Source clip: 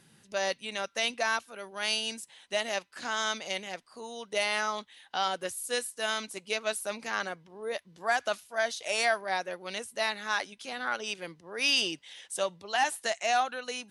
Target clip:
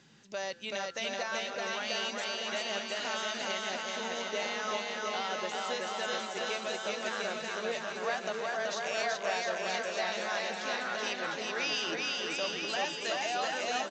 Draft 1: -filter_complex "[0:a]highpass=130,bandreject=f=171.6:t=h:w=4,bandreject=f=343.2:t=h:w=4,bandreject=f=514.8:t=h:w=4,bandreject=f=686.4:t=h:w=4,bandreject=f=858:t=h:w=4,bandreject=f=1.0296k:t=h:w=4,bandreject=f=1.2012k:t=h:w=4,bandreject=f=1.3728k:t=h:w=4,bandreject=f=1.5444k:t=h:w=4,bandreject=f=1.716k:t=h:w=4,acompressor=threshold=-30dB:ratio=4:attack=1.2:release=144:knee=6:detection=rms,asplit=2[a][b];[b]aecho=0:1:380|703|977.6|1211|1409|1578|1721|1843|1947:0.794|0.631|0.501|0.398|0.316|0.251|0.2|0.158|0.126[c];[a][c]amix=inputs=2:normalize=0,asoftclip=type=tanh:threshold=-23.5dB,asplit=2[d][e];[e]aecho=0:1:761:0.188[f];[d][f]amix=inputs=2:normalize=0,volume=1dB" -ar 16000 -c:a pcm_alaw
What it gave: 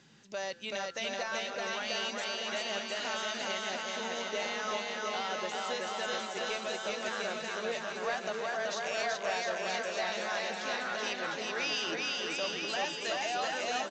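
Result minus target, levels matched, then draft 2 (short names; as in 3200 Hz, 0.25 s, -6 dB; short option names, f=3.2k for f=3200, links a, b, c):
soft clip: distortion +11 dB
-filter_complex "[0:a]highpass=130,bandreject=f=171.6:t=h:w=4,bandreject=f=343.2:t=h:w=4,bandreject=f=514.8:t=h:w=4,bandreject=f=686.4:t=h:w=4,bandreject=f=858:t=h:w=4,bandreject=f=1.0296k:t=h:w=4,bandreject=f=1.2012k:t=h:w=4,bandreject=f=1.3728k:t=h:w=4,bandreject=f=1.5444k:t=h:w=4,bandreject=f=1.716k:t=h:w=4,acompressor=threshold=-30dB:ratio=4:attack=1.2:release=144:knee=6:detection=rms,asplit=2[a][b];[b]aecho=0:1:380|703|977.6|1211|1409|1578|1721|1843|1947:0.794|0.631|0.501|0.398|0.316|0.251|0.2|0.158|0.126[c];[a][c]amix=inputs=2:normalize=0,asoftclip=type=tanh:threshold=-17dB,asplit=2[d][e];[e]aecho=0:1:761:0.188[f];[d][f]amix=inputs=2:normalize=0,volume=1dB" -ar 16000 -c:a pcm_alaw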